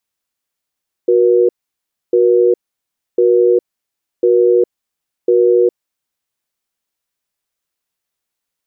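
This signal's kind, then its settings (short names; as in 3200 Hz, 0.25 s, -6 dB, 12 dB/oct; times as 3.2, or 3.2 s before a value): cadence 366 Hz, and 478 Hz, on 0.41 s, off 0.64 s, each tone -10.5 dBFS 5.12 s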